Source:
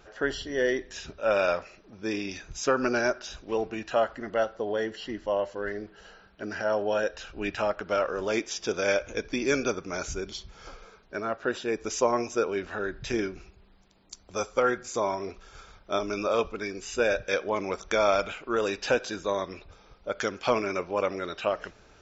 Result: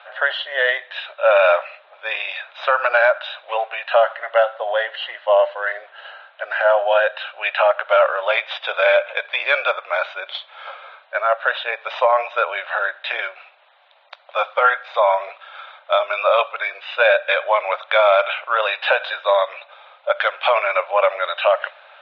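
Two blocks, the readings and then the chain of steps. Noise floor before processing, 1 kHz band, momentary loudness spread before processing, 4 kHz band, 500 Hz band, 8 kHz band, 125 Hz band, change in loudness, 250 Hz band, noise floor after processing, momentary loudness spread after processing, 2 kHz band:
−57 dBFS, +12.5 dB, 12 LU, +11.0 dB, +9.0 dB, can't be measured, below −35 dB, +10.0 dB, below −25 dB, −51 dBFS, 14 LU, +13.0 dB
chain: stylus tracing distortion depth 0.036 ms
Chebyshev band-pass filter 560–3,800 Hz, order 5
boost into a limiter +19 dB
level −4.5 dB

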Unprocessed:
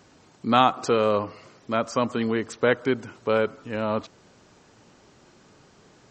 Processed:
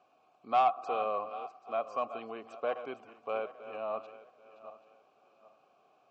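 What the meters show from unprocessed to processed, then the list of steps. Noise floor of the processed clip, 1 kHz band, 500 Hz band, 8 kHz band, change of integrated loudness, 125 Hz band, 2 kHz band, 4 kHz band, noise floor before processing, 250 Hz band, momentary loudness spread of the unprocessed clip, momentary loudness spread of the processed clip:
−68 dBFS, −6.0 dB, −11.5 dB, below −25 dB, −10.0 dB, below −25 dB, −15.5 dB, −18.0 dB, −56 dBFS, −23.0 dB, 9 LU, 22 LU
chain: feedback delay that plays each chunk backwards 392 ms, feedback 48%, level −12 dB
formant filter a
soft clipping −17 dBFS, distortion −20 dB

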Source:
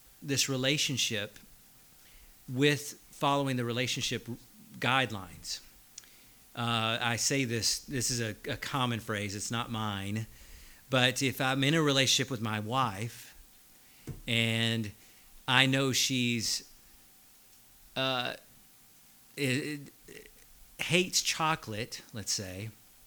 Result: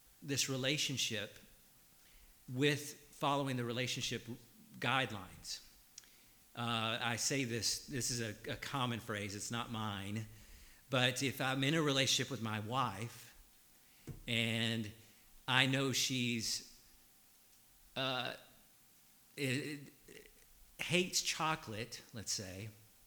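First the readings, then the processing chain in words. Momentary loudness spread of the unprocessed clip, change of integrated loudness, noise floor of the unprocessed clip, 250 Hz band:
16 LU, −7.0 dB, −59 dBFS, −7.0 dB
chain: pitch vibrato 13 Hz 40 cents
dense smooth reverb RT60 0.97 s, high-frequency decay 1×, pre-delay 0 ms, DRR 15.5 dB
level −7 dB

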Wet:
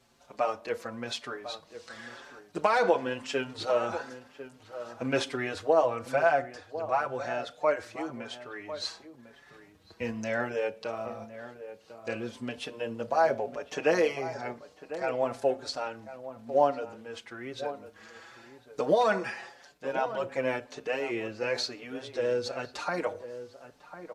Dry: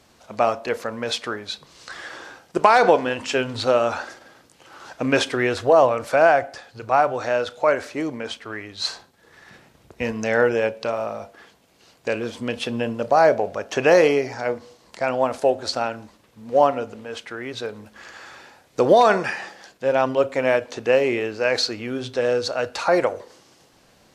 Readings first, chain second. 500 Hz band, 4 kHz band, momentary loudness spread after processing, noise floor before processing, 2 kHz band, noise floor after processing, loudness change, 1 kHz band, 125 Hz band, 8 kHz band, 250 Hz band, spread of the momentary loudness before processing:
−9.5 dB, −9.5 dB, 18 LU, −57 dBFS, −9.0 dB, −58 dBFS, −9.5 dB, −9.5 dB, −9.5 dB, −9.5 dB, −9.5 dB, 18 LU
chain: slap from a distant wall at 180 metres, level −12 dB
barber-pole flanger 5.5 ms +0.98 Hz
level −6.5 dB

